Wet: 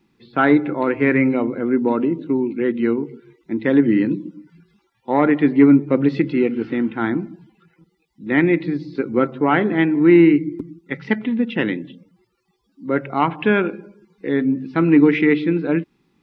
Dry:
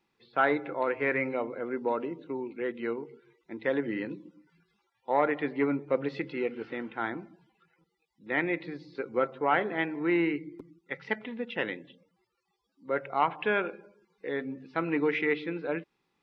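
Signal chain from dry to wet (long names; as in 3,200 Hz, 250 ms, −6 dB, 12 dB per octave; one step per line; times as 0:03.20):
low shelf with overshoot 390 Hz +9 dB, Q 1.5
level +8 dB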